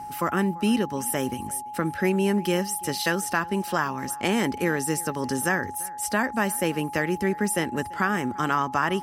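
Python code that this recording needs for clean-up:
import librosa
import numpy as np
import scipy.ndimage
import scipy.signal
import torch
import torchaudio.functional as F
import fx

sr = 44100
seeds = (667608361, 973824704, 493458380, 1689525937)

y = fx.notch(x, sr, hz=840.0, q=30.0)
y = fx.fix_echo_inverse(y, sr, delay_ms=340, level_db=-23.0)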